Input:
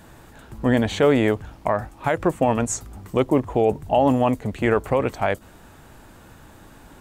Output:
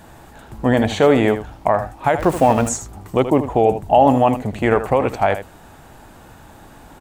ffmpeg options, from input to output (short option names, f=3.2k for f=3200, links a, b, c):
-filter_complex "[0:a]asettb=1/sr,asplit=3[a][b][c];[a]atrim=end=2.194[d];[b]atrim=start=2.19:end=2.69,asetpts=PTS-STARTPTS,afade=t=in:d=0.004:c=qsin,afade=t=out:st=0.496:d=0.004:c=qsin,aeval=exprs='val(0)+0.5*0.0299*sgn(val(0))':c=same[e];[c]atrim=start=2.686[f];[d][e]acrossfade=d=0.004:c1=hsin:c2=qsin[g];[g][f]acrossfade=d=0.004:c1=qsin:c2=hsin,equalizer=f=770:w=2.5:g=5.5,aecho=1:1:79:0.282,volume=2.5dB"